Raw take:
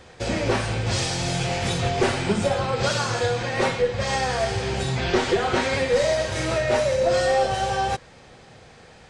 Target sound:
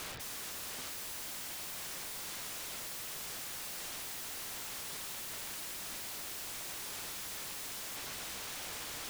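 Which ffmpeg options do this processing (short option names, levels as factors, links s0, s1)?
-af "lowpass=4800,equalizer=f=630:w=0.55:g=-6.5,bandreject=f=50:t=h:w=6,bandreject=f=100:t=h:w=6,bandreject=f=150:t=h:w=6,bandreject=f=200:t=h:w=6,bandreject=f=250:t=h:w=6,areverse,acompressor=threshold=0.0126:ratio=8,areverse,alimiter=level_in=4.47:limit=0.0631:level=0:latency=1:release=12,volume=0.224,aeval=exprs='(mod(422*val(0)+1,2)-1)/422':c=same,volume=5.31"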